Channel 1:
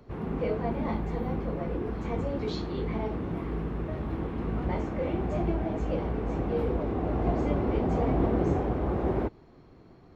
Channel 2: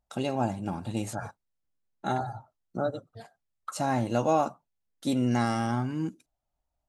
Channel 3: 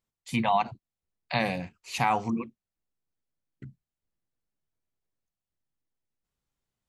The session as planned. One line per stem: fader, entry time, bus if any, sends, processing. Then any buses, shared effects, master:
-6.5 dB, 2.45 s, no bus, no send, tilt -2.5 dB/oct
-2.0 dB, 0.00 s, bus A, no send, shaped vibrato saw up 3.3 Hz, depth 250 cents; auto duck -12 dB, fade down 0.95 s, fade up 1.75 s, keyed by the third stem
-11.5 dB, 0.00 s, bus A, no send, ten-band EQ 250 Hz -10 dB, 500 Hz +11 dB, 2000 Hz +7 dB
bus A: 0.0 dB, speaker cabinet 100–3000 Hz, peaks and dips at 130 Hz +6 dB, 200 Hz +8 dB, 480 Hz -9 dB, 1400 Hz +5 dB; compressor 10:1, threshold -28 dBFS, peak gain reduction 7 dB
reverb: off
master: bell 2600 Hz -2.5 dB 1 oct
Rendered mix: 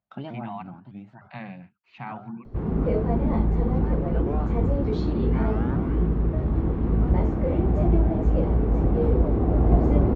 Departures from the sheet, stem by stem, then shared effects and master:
stem 1 -6.5 dB -> +1.5 dB; stem 3: missing ten-band EQ 250 Hz -10 dB, 500 Hz +11 dB, 2000 Hz +7 dB

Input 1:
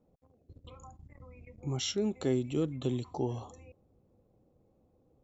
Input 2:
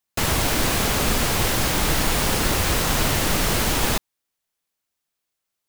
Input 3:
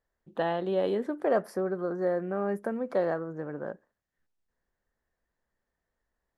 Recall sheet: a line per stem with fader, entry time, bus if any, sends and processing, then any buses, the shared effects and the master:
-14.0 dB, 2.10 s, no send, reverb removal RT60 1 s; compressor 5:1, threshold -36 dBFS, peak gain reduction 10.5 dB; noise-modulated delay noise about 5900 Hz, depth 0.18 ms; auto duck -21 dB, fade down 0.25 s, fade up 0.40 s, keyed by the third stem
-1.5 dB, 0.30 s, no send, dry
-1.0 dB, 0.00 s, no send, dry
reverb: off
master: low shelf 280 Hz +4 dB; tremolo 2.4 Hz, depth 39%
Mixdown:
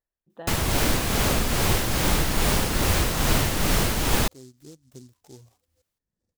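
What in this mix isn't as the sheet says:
stem 1: missing compressor 5:1, threshold -36 dBFS, peak gain reduction 10.5 dB; stem 3 -1.0 dB -> -11.5 dB

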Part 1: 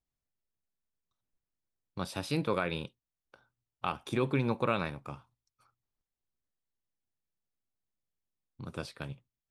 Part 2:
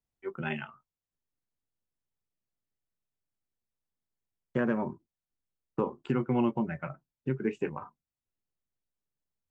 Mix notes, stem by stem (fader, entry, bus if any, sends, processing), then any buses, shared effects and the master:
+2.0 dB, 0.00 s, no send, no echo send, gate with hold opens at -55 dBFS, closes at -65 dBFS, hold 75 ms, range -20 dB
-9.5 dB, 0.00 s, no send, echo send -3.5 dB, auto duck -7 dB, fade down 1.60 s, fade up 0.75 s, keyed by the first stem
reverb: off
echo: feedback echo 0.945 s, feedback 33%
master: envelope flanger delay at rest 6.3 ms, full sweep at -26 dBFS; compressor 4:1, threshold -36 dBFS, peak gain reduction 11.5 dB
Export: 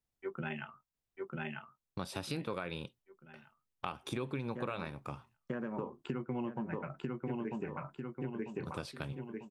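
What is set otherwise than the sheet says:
stem 2 -9.5 dB -> 0.0 dB; master: missing envelope flanger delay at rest 6.3 ms, full sweep at -26 dBFS

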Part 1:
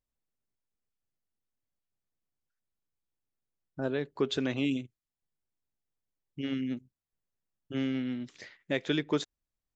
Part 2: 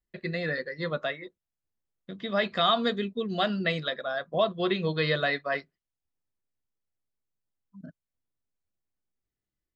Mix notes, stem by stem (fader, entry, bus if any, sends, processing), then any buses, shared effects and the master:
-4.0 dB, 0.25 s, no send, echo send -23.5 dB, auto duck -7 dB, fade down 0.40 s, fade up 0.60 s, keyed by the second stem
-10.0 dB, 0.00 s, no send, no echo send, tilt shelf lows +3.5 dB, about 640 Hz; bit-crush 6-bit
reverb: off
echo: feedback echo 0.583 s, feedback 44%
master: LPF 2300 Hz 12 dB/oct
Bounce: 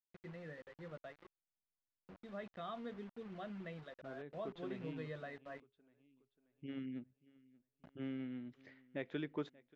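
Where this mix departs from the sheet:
stem 1 -4.0 dB -> -11.5 dB; stem 2 -10.0 dB -> -20.0 dB

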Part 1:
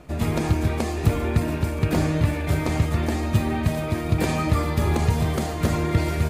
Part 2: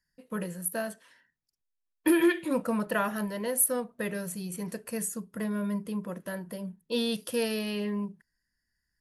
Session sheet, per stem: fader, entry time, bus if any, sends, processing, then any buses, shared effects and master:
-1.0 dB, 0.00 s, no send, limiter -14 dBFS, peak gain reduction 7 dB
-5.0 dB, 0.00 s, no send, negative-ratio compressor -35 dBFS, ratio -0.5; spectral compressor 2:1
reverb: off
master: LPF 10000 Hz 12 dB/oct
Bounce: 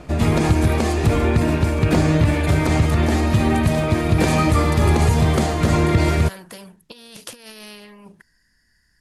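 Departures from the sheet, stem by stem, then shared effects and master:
stem 1 -1.0 dB -> +7.0 dB; stem 2 -5.0 dB -> +1.5 dB

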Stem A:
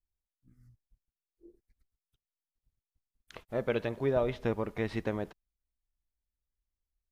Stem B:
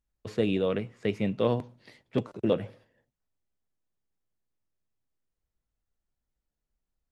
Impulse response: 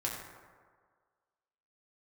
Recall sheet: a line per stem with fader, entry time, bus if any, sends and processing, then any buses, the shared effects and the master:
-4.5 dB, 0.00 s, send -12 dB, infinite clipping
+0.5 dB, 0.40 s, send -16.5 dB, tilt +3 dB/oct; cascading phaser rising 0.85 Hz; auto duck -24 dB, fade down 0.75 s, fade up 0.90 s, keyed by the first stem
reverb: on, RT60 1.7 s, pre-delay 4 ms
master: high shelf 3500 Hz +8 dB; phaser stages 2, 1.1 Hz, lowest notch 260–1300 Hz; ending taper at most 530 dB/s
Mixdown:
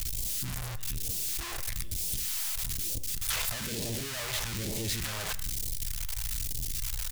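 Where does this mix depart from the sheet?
stem A -4.5 dB -> +2.5 dB; stem B +0.5 dB -> -10.5 dB

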